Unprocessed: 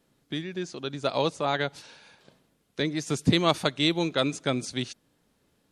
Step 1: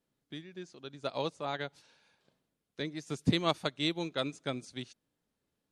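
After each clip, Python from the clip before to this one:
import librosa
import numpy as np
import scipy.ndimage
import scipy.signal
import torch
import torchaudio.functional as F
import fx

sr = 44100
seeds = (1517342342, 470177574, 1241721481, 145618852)

y = fx.upward_expand(x, sr, threshold_db=-36.0, expansion=1.5)
y = y * 10.0 ** (-5.0 / 20.0)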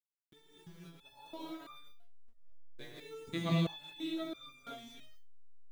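y = fx.delta_hold(x, sr, step_db=-45.5)
y = fx.rev_gated(y, sr, seeds[0], gate_ms=270, shape='rising', drr_db=-5.5)
y = fx.resonator_held(y, sr, hz=3.0, low_hz=120.0, high_hz=1200.0)
y = y * 10.0 ** (-1.0 / 20.0)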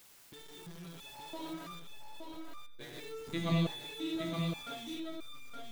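y = x + 0.5 * 10.0 ** (-47.5 / 20.0) * np.sign(x)
y = y + 10.0 ** (-5.0 / 20.0) * np.pad(y, (int(869 * sr / 1000.0), 0))[:len(y)]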